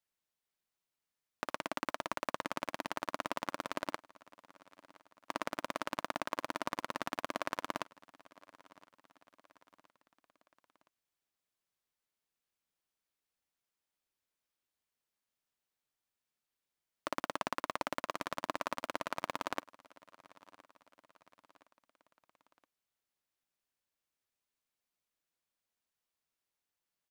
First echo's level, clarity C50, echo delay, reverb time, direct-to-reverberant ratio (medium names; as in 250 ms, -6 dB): -22.5 dB, no reverb, 1018 ms, no reverb, no reverb